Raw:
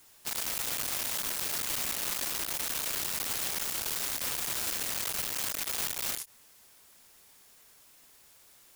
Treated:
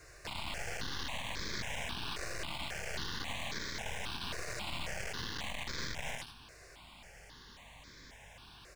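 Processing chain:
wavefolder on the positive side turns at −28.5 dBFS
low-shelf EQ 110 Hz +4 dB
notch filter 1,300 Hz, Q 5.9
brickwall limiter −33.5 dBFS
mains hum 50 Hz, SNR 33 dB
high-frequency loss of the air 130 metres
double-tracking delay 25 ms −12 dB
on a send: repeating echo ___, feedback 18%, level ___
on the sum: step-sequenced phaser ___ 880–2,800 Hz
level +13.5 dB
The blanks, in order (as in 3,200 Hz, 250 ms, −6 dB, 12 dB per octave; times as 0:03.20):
82 ms, −7 dB, 3.7 Hz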